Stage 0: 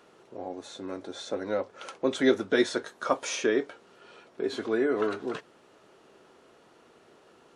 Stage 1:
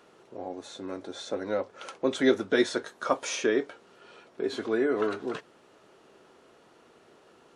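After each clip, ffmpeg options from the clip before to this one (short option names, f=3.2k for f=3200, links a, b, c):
-af anull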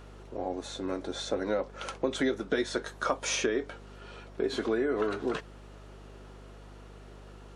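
-af "acompressor=threshold=-28dB:ratio=12,aeval=exprs='val(0)+0.00251*(sin(2*PI*50*n/s)+sin(2*PI*2*50*n/s)/2+sin(2*PI*3*50*n/s)/3+sin(2*PI*4*50*n/s)/4+sin(2*PI*5*50*n/s)/5)':c=same,volume=3.5dB"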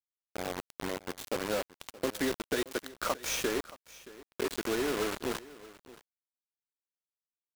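-af "acrusher=bits=4:mix=0:aa=0.000001,aecho=1:1:624:0.112,volume=-3.5dB"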